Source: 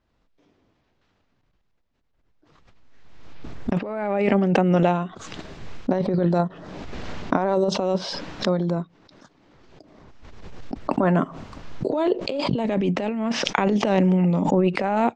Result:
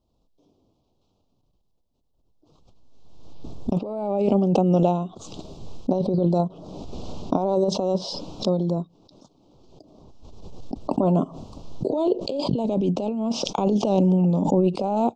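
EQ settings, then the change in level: Butterworth band-stop 1.8 kHz, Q 0.67; 0.0 dB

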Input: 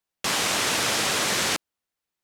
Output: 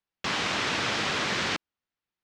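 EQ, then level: distance through air 160 m; peaking EQ 590 Hz -4 dB 1.4 oct; 0.0 dB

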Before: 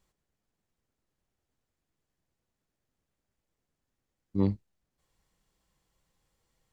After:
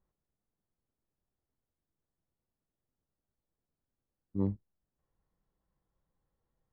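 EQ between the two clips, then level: distance through air 350 m; peaking EQ 2.5 kHz -9.5 dB 0.57 oct; treble shelf 3.5 kHz -11 dB; -4.5 dB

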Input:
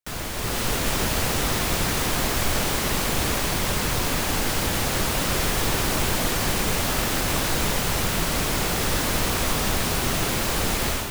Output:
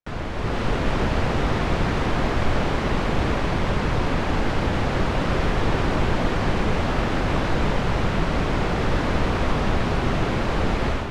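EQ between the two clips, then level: tape spacing loss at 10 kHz 23 dB; treble shelf 4.8 kHz -8.5 dB; +4.5 dB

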